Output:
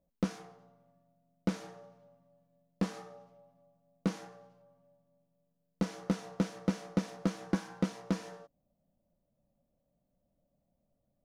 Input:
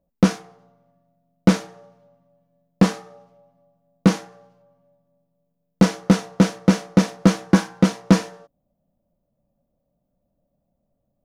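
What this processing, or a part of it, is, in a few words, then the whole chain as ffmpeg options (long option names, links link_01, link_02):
de-esser from a sidechain: -filter_complex "[0:a]asplit=2[link_01][link_02];[link_02]highpass=4300,apad=whole_len=495866[link_03];[link_01][link_03]sidechaincompress=threshold=-46dB:ratio=4:attack=3.1:release=93,volume=-5.5dB"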